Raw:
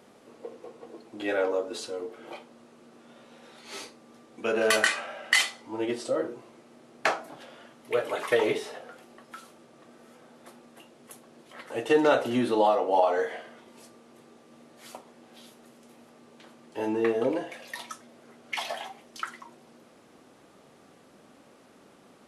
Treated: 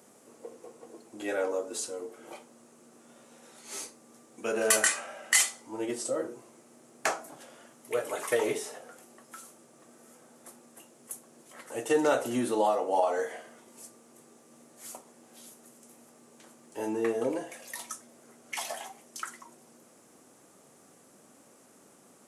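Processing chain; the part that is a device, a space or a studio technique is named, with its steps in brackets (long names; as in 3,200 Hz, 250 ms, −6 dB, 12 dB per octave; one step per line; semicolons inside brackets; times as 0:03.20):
budget condenser microphone (high-pass filter 89 Hz; high shelf with overshoot 5,400 Hz +10.5 dB, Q 1.5)
level −3.5 dB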